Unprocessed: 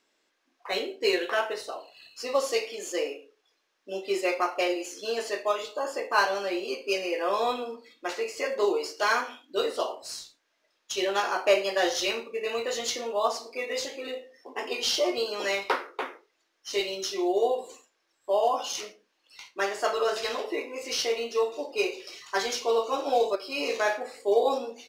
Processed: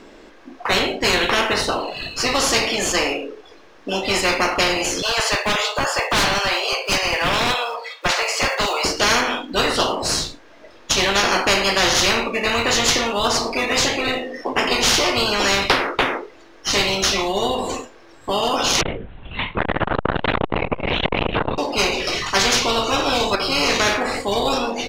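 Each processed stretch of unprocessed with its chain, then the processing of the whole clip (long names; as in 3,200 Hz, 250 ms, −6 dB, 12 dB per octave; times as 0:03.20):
0:05.02–0:08.85: one scale factor per block 7 bits + Butterworth high-pass 620 Hz + gain into a clipping stage and back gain 28 dB
0:18.81–0:21.58: downward compressor, threshold −29 dBFS + linear-prediction vocoder at 8 kHz whisper + saturating transformer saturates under 730 Hz
whole clip: spectral tilt −4 dB per octave; every bin compressed towards the loudest bin 4 to 1; level +6 dB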